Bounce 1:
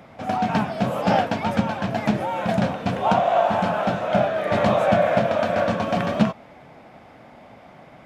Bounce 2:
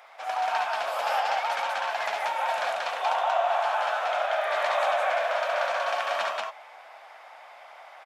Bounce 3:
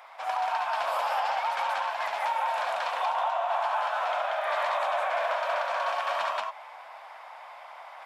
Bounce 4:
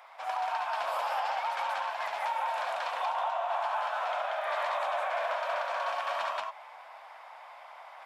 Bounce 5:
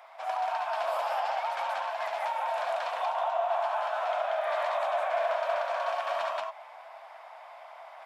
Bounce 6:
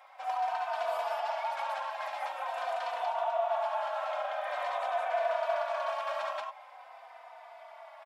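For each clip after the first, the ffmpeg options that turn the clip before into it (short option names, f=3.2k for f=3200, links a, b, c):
-filter_complex "[0:a]highpass=f=740:w=0.5412,highpass=f=740:w=1.3066,acompressor=threshold=-28dB:ratio=2,asplit=2[a][b];[b]aecho=0:1:69.97|183.7:0.501|0.891[c];[a][c]amix=inputs=2:normalize=0"
-af "equalizer=f=160:t=o:w=0.33:g=-11,equalizer=f=400:t=o:w=0.33:g=-7,equalizer=f=1k:t=o:w=0.33:g=8,equalizer=f=6.3k:t=o:w=0.33:g=-3,alimiter=limit=-19dB:level=0:latency=1:release=146,areverse,acompressor=mode=upward:threshold=-43dB:ratio=2.5,areverse"
-af "highpass=f=190:w=0.5412,highpass=f=190:w=1.3066,volume=-3.5dB"
-af "equalizer=f=660:t=o:w=0.28:g=8,volume=-1dB"
-filter_complex "[0:a]asplit=2[a][b];[b]adelay=3.3,afreqshift=-0.46[c];[a][c]amix=inputs=2:normalize=1"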